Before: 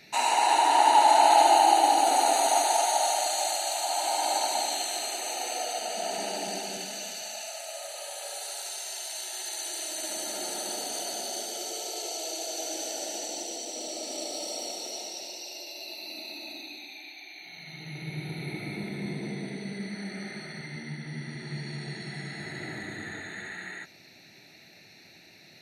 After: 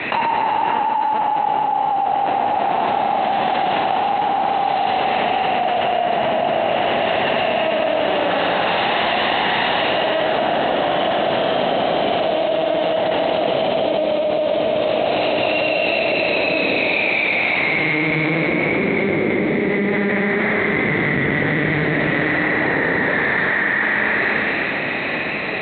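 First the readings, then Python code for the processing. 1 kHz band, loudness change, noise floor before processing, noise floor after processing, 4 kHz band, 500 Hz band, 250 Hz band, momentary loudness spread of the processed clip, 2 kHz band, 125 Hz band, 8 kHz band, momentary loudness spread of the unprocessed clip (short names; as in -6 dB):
+7.5 dB, +10.0 dB, -54 dBFS, -21 dBFS, +7.5 dB, +15.5 dB, +17.0 dB, 2 LU, +19.5 dB, +13.0 dB, under -40 dB, 18 LU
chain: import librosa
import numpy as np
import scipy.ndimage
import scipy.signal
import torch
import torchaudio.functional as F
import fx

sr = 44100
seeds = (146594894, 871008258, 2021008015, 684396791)

y = 10.0 ** (-10.0 / 20.0) * (np.abs((x / 10.0 ** (-10.0 / 20.0) + 3.0) % 4.0 - 2.0) - 1.0)
y = fx.lpc_vocoder(y, sr, seeds[0], excitation='pitch_kept', order=8)
y = fx.bandpass_edges(y, sr, low_hz=260.0, high_hz=2300.0)
y = fx.rev_schroeder(y, sr, rt60_s=2.9, comb_ms=29, drr_db=0.0)
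y = fx.env_flatten(y, sr, amount_pct=100)
y = y * 10.0 ** (-6.5 / 20.0)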